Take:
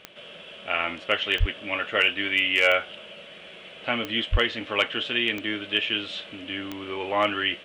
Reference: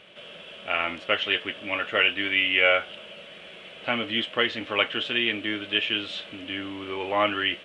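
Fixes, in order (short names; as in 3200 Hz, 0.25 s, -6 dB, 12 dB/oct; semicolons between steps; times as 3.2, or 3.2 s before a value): clip repair -9.5 dBFS; de-click; 1.39–1.51 HPF 140 Hz 24 dB/oct; 4.31–4.43 HPF 140 Hz 24 dB/oct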